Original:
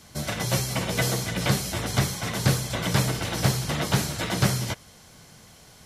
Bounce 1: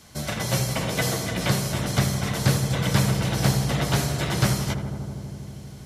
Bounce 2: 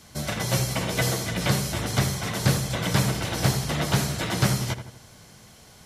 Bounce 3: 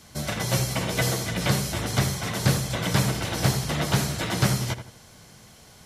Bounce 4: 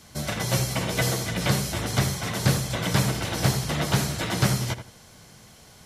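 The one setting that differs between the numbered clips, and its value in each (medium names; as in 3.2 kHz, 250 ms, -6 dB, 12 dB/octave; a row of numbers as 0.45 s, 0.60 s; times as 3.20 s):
filtered feedback delay, feedback: 90%, 47%, 32%, 21%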